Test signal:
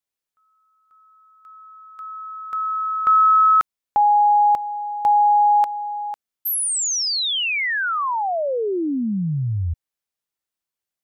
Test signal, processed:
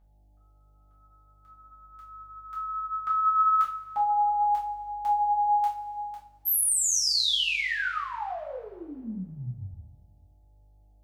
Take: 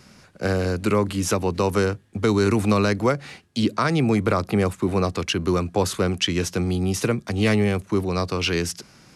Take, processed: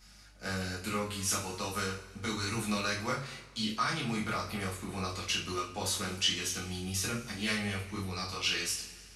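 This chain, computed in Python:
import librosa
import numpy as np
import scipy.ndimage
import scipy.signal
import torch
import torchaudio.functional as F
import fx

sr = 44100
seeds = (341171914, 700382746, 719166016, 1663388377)

y = fx.dmg_buzz(x, sr, base_hz=50.0, harmonics=17, level_db=-47.0, tilt_db=-6, odd_only=False)
y = fx.chorus_voices(y, sr, voices=4, hz=0.39, base_ms=27, depth_ms=5.0, mix_pct=35)
y = fx.tone_stack(y, sr, knobs='5-5-5')
y = fx.rev_double_slope(y, sr, seeds[0], early_s=0.3, late_s=1.7, knee_db=-18, drr_db=-5.0)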